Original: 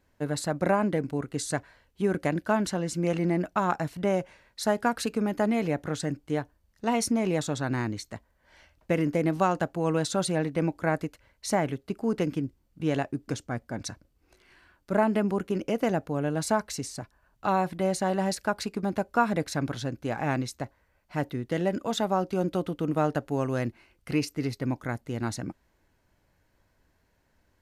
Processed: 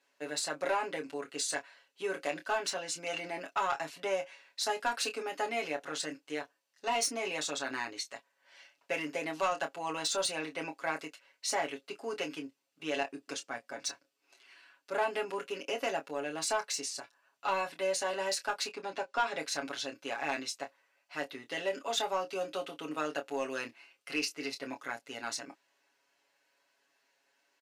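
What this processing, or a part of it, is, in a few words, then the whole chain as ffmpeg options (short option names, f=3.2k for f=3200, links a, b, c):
intercom: -filter_complex "[0:a]aemphasis=mode=production:type=riaa,asettb=1/sr,asplit=3[a][b][c];[a]atrim=end=18.684[d];[b]atrim=start=18.68:end=19.38,asetpts=PTS-STARTPTS,afade=t=in:d=0.004:c=qsin,afade=t=out:st=0.696:d=0.004:c=qsin,lowpass=6.6k[e];[c]atrim=start=19.376[f];[d][e]acrossfade=d=0.004:c1=hsin:c2=qsin[g];[g][f]acrossfade=d=0.004:c1=qsin:c2=hsin,highpass=340,lowpass=5k,equalizer=f=2.7k:t=o:w=0.21:g=6,aecho=1:1:7.2:0.87,asoftclip=type=tanh:threshold=-16.5dB,asplit=2[h][i];[i]adelay=26,volume=-9dB[j];[h][j]amix=inputs=2:normalize=0,volume=-5.5dB"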